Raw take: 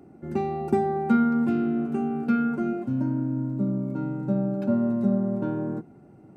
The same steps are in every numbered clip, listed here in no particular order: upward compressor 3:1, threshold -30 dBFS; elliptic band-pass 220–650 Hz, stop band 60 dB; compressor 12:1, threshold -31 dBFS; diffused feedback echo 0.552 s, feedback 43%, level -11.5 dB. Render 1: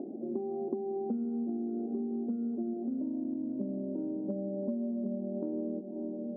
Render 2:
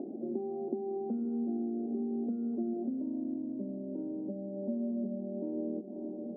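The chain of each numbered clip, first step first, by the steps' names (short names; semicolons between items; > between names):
diffused feedback echo > upward compressor > elliptic band-pass > compressor; compressor > diffused feedback echo > upward compressor > elliptic band-pass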